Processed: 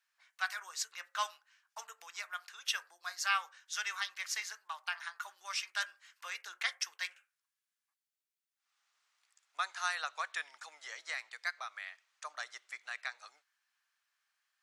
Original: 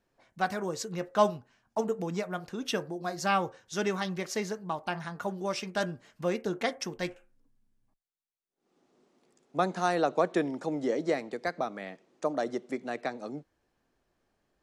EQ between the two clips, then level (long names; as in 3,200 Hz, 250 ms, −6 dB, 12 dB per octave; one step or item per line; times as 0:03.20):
high-pass filter 1,300 Hz 24 dB per octave
+1.0 dB